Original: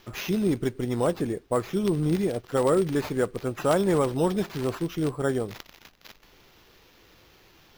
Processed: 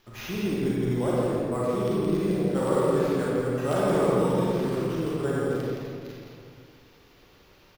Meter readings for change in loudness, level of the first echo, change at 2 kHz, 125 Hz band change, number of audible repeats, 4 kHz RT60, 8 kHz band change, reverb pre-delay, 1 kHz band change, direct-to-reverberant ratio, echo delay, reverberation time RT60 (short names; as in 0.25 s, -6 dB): +0.5 dB, -4.0 dB, -0.5 dB, +1.0 dB, 1, 1.2 s, -3.0 dB, 32 ms, +0.5 dB, -7.0 dB, 0.169 s, 2.2 s